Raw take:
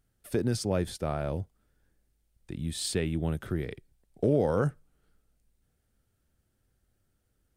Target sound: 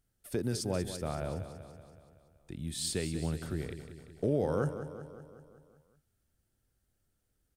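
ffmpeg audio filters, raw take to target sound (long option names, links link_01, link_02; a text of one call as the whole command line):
ffmpeg -i in.wav -af "bass=frequency=250:gain=0,treble=frequency=4000:gain=4,aecho=1:1:188|376|564|752|940|1128|1316:0.282|0.166|0.0981|0.0579|0.0342|0.0201|0.0119,volume=-5dB" out.wav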